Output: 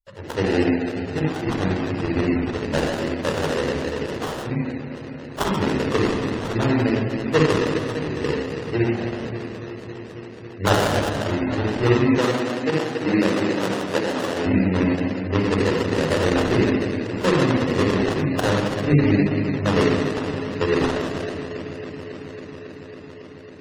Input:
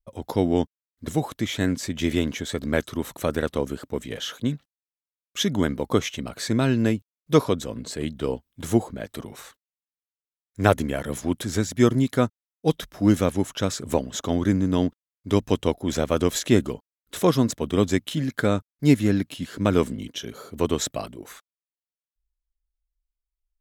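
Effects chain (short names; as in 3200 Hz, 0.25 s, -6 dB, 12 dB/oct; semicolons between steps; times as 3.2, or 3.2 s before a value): Wiener smoothing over 15 samples; low shelf 440 Hz -11 dB; analogue delay 0.275 s, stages 4096, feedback 85%, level -14.5 dB; shoebox room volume 2700 m³, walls mixed, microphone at 4.8 m; sample-rate reducer 2300 Hz, jitter 20%; 12.18–14.46 HPF 180 Hz 12 dB/oct; spectral gate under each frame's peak -30 dB strong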